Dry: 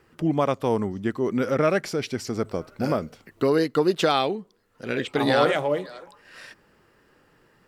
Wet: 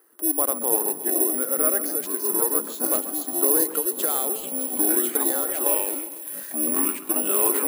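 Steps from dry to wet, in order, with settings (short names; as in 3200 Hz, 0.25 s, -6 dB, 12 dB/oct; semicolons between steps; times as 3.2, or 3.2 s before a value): bell 2500 Hz -9.5 dB 0.54 oct; echoes that change speed 0.216 s, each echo -5 st, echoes 3; elliptic band-pass 300–6300 Hz, stop band 40 dB; 3.63–5.66 compressor, threshold -23 dBFS, peak gain reduction 8 dB; careless resampling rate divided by 4×, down filtered, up zero stuff; AGC; split-band echo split 3000 Hz, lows 0.134 s, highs 0.613 s, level -13 dB; gain -3 dB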